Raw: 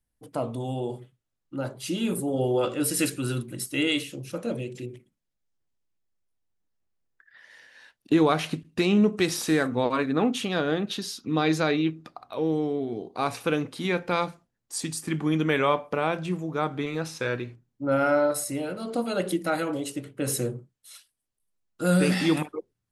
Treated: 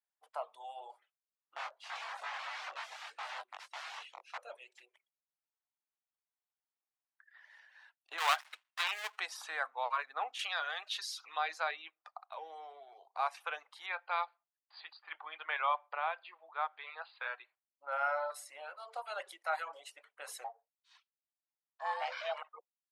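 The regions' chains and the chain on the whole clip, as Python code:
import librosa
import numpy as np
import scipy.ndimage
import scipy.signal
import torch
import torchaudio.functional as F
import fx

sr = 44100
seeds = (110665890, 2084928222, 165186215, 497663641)

y = fx.chain(x, sr, fx.overflow_wrap(gain_db=28.5),
    fx.lowpass(hz=5200.0, slope=12),
    fx.doubler(ms=21.0, db=-5.0), at=(1.56, 4.38))
y = fx.chain(y, sr, fx.dead_time(dead_ms=0.23),
    fx.tilt_shelf(db=-10.0, hz=740.0), at=(8.18, 9.2))
y = fx.chain(y, sr, fx.tilt_shelf(db=-8.5, hz=1400.0),
    fx.env_flatten(amount_pct=50), at=(10.39, 11.38))
y = fx.chain(y, sr, fx.brickwall_bandpass(low_hz=220.0, high_hz=4900.0),
    fx.low_shelf(hz=310.0, db=-8.0), at=(13.86, 17.92))
y = fx.chain(y, sr, fx.lowpass(hz=5800.0, slope=24),
    fx.ring_mod(carrier_hz=330.0), at=(20.44, 22.51))
y = fx.lowpass(y, sr, hz=1300.0, slope=6)
y = fx.dereverb_blind(y, sr, rt60_s=0.53)
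y = scipy.signal.sosfilt(scipy.signal.butter(6, 730.0, 'highpass', fs=sr, output='sos'), y)
y = y * 10.0 ** (-2.0 / 20.0)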